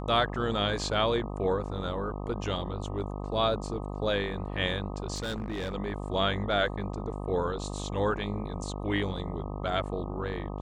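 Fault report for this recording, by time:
buzz 50 Hz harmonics 25 -36 dBFS
5.14–5.74 clipped -29.5 dBFS

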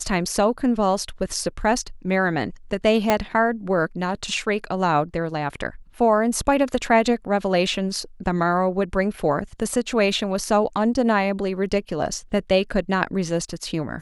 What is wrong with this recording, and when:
3.1 pop -3 dBFS

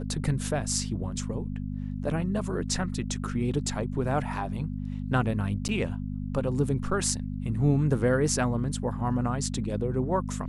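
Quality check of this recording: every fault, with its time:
hum 50 Hz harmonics 5 -33 dBFS
5.68–5.69 gap 9.2 ms

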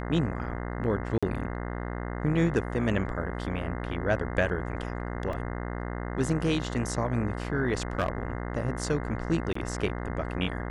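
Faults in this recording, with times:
buzz 60 Hz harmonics 35 -34 dBFS
1.18–1.23 gap 46 ms
5.33 gap 2.6 ms
7.99–8.18 clipped -21 dBFS
9.53–9.55 gap 24 ms

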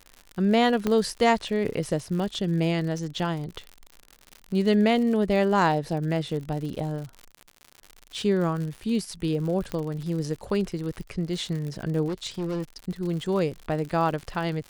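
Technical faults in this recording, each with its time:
crackle 87/s -33 dBFS
0.87 pop -12 dBFS
9.72 pop -18 dBFS
12.07–12.64 clipped -25.5 dBFS

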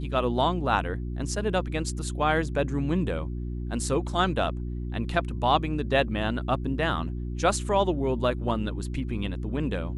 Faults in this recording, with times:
hum 60 Hz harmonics 6 -32 dBFS

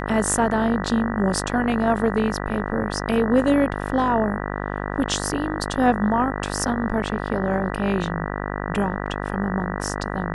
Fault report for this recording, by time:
buzz 50 Hz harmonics 39 -28 dBFS

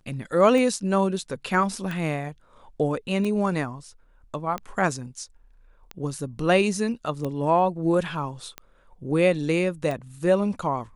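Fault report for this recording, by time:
tick 45 rpm -18 dBFS

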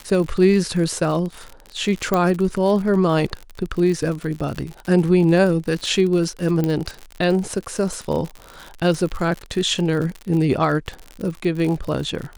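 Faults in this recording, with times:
crackle 65/s -26 dBFS
2.14 pop -7 dBFS
6.64 pop -10 dBFS

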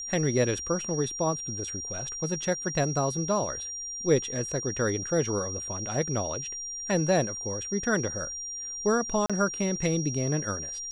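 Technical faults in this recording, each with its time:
tone 5700 Hz -34 dBFS
9.26–9.3 gap 36 ms

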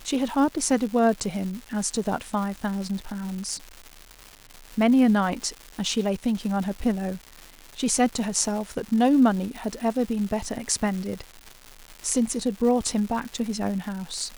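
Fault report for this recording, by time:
crackle 370/s -32 dBFS

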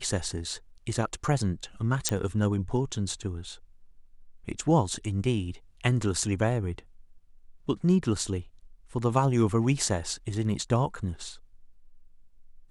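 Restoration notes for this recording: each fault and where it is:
2.09 pop -9 dBFS

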